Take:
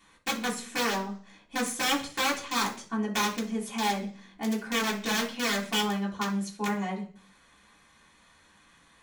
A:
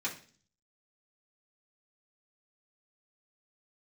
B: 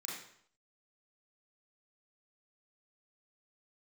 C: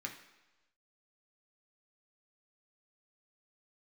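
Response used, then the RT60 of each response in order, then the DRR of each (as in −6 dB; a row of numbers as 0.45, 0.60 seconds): A; 0.40, 0.65, 1.1 seconds; −7.5, −6.0, 0.5 decibels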